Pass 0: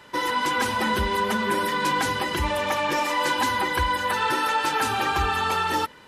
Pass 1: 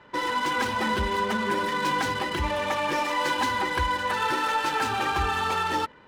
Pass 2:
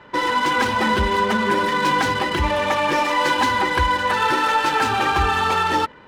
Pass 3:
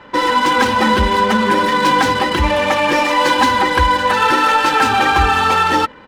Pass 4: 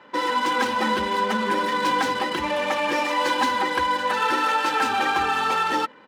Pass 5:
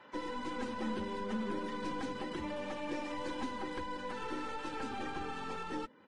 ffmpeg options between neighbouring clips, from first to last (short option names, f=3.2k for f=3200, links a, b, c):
-af "adynamicsmooth=sensitivity=6.5:basefreq=2.3k,volume=-2dB"
-af "highshelf=f=6.8k:g=-4.5,volume=7dB"
-af "aecho=1:1:3.8:0.31,volume=5dB"
-af "highpass=200,volume=-8.5dB"
-filter_complex "[0:a]aeval=exprs='(tanh(6.31*val(0)+0.4)-tanh(0.4))/6.31':c=same,acrossover=split=420[a][b];[b]acompressor=threshold=-47dB:ratio=2[c];[a][c]amix=inputs=2:normalize=0,volume=-6dB" -ar 22050 -c:a libvorbis -b:a 32k